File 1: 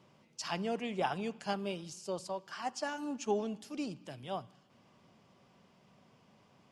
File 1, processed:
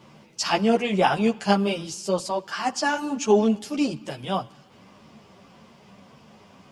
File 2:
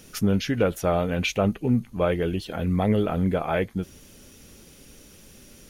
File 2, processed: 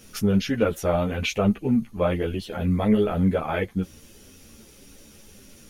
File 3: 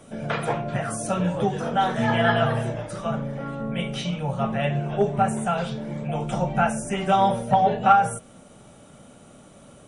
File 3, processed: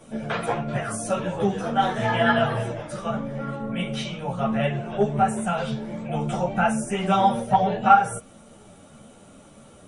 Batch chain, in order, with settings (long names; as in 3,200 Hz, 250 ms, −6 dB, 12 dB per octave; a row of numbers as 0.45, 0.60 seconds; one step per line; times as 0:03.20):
string-ensemble chorus
loudness normalisation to −24 LKFS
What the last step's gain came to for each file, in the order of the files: +16.5, +3.0, +3.0 decibels